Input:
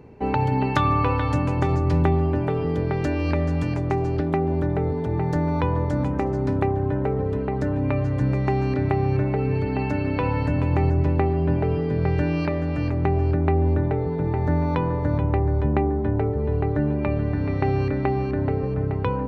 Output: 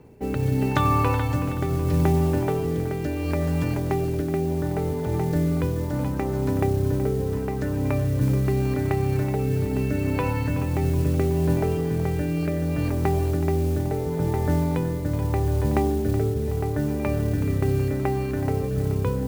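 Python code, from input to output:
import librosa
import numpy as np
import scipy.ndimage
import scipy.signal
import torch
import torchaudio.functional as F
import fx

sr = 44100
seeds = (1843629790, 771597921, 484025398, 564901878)

y = fx.rotary(x, sr, hz=0.75)
y = fx.mod_noise(y, sr, seeds[0], snr_db=24)
y = fx.echo_split(y, sr, split_hz=300.0, low_ms=90, high_ms=374, feedback_pct=52, wet_db=-13)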